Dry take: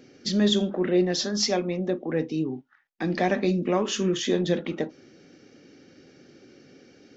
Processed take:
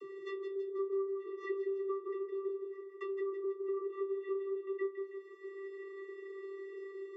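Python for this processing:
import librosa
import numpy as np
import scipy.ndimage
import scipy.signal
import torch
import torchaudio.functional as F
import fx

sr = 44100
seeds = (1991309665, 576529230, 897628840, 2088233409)

p1 = scipy.ndimage.median_filter(x, 9, mode='constant')
p2 = fx.graphic_eq_15(p1, sr, hz=(250, 630, 1600, 6300), db=(-7, -4, 5, -3))
p3 = fx.env_lowpass_down(p2, sr, base_hz=310.0, full_db=-23.5)
p4 = fx.fold_sine(p3, sr, drive_db=9, ceiling_db=-16.5)
p5 = p3 + F.gain(torch.from_numpy(p4), -6.0).numpy()
p6 = fx.stiff_resonator(p5, sr, f0_hz=150.0, decay_s=0.34, stiffness=0.002)
p7 = fx.wow_flutter(p6, sr, seeds[0], rate_hz=2.1, depth_cents=28.0)
p8 = fx.vocoder(p7, sr, bands=32, carrier='square', carrier_hz=390.0)
p9 = p8 + fx.echo_feedback(p8, sr, ms=161, feedback_pct=40, wet_db=-7.5, dry=0)
p10 = fx.band_squash(p9, sr, depth_pct=70)
y = F.gain(torch.from_numpy(p10), 2.0).numpy()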